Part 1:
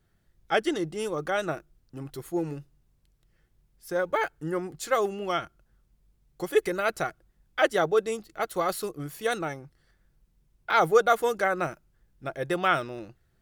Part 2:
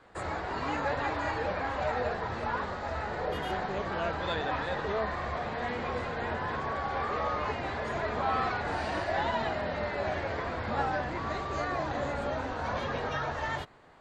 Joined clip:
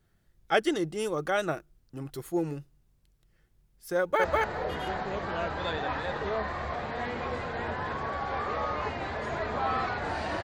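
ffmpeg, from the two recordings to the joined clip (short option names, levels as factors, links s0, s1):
-filter_complex "[0:a]apad=whole_dur=10.43,atrim=end=10.43,atrim=end=4.242[s0];[1:a]atrim=start=2.868:end=9.06[s1];[s0][s1]acrossfade=d=0.004:c1=hsin:c2=hsin,asplit=2[s2][s3];[s3]afade=t=in:st=3.99:d=0.01,afade=t=out:st=4.24:d=0.01,aecho=0:1:200|400:0.944061|0.0944061[s4];[s2][s4]amix=inputs=2:normalize=0"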